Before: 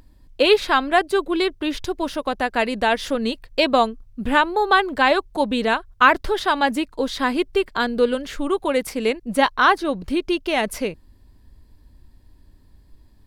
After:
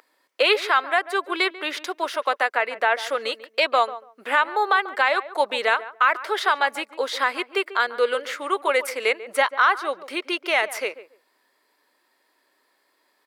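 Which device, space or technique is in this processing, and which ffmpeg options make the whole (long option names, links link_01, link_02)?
laptop speaker: -filter_complex "[0:a]asettb=1/sr,asplit=3[link_01][link_02][link_03];[link_01]atrim=end=2.534[link_04];[link_02]atrim=start=2.53:end=2.98,asetpts=PTS-STARTPTS,afade=type=in:duration=0.004:curve=qsin,afade=type=out:start_time=0.446:duration=0.004:curve=qsin,acrossover=split=2700[link_05][link_06];[link_06]acompressor=threshold=-42dB:ratio=4:attack=1:release=60[link_07];[link_05][link_07]amix=inputs=2:normalize=0[link_08];[link_03]atrim=start=2.976[link_09];[link_04][link_08]acrossfade=duration=0.004:curve1=hsin:curve2=qsin[link_10];[link_10][link_09]acrossfade=duration=0.004:curve1=qsin:curve2=hsin,highpass=frequency=450:width=0.5412,highpass=frequency=450:width=1.3066,equalizer=frequency=1300:width_type=o:width=0.49:gain=7,equalizer=frequency=2100:width_type=o:width=0.48:gain=7.5,alimiter=limit=-8dB:level=0:latency=1:release=333,asplit=2[link_11][link_12];[link_12]adelay=142,lowpass=frequency=1200:poles=1,volume=-13.5dB,asplit=2[link_13][link_14];[link_14]adelay=142,lowpass=frequency=1200:poles=1,volume=0.19[link_15];[link_11][link_13][link_15]amix=inputs=3:normalize=0"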